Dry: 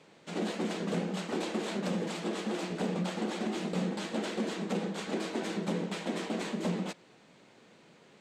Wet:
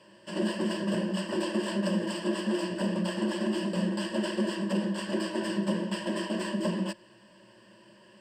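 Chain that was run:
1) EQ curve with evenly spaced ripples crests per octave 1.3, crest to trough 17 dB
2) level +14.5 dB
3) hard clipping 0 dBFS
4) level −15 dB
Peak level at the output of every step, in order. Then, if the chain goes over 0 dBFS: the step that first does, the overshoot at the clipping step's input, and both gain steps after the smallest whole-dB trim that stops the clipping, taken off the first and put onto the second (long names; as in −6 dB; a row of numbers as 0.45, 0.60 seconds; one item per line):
−16.5, −2.0, −2.0, −17.0 dBFS
no step passes full scale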